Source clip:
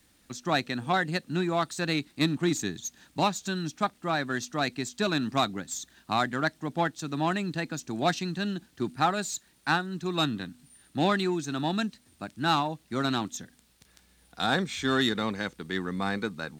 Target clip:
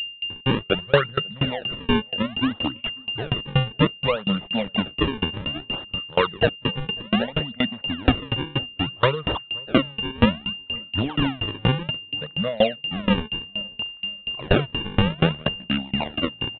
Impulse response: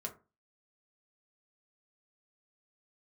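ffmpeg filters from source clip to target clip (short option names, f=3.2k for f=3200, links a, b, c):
-filter_complex "[0:a]afftfilt=real='re*pow(10,20/40*sin(2*PI*(0.61*log(max(b,1)*sr/1024/100)/log(2)-(0.36)*(pts-256)/sr)))':imag='im*pow(10,20/40*sin(2*PI*(0.61*log(max(b,1)*sr/1024/100)/log(2)-(0.36)*(pts-256)/sr)))':win_size=1024:overlap=0.75,adynamicequalizer=threshold=0.0224:dfrequency=570:dqfactor=1.2:tfrequency=570:tqfactor=1.2:attack=5:release=100:ratio=0.375:range=2:mode=boostabove:tftype=bell,dynaudnorm=f=220:g=5:m=4dB,asplit=2[a][b];[b]acrusher=bits=3:mode=log:mix=0:aa=0.000001,volume=-6dB[c];[a][c]amix=inputs=2:normalize=0,asetrate=33038,aresample=44100,atempo=1.33484,acrusher=samples=38:mix=1:aa=0.000001:lfo=1:lforange=60.8:lforate=0.62,aeval=exprs='val(0)+0.0708*sin(2*PI*2800*n/s)':c=same,asplit=2[d][e];[e]adelay=540,lowpass=f=880:p=1,volume=-22dB,asplit=2[f][g];[g]adelay=540,lowpass=f=880:p=1,volume=0.42,asplit=2[h][i];[i]adelay=540,lowpass=f=880:p=1,volume=0.42[j];[f][h][j]amix=inputs=3:normalize=0[k];[d][k]amix=inputs=2:normalize=0,aresample=8000,aresample=44100,alimiter=level_in=4dB:limit=-1dB:release=50:level=0:latency=1,aeval=exprs='val(0)*pow(10,-27*if(lt(mod(4.2*n/s,1),2*abs(4.2)/1000),1-mod(4.2*n/s,1)/(2*abs(4.2)/1000),(mod(4.2*n/s,1)-2*abs(4.2)/1000)/(1-2*abs(4.2)/1000))/20)':c=same,volume=-2dB"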